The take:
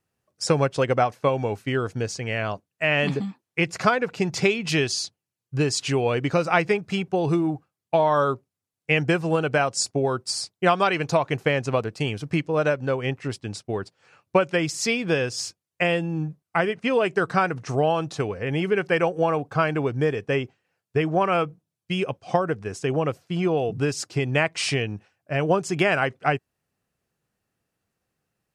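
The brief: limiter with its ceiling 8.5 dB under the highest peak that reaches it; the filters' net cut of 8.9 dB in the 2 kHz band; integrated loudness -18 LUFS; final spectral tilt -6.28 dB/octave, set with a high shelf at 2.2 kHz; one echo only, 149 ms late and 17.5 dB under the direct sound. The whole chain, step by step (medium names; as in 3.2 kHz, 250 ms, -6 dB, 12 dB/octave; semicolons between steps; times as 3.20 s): peaking EQ 2 kHz -7 dB; treble shelf 2.2 kHz -8.5 dB; peak limiter -16 dBFS; delay 149 ms -17.5 dB; trim +9.5 dB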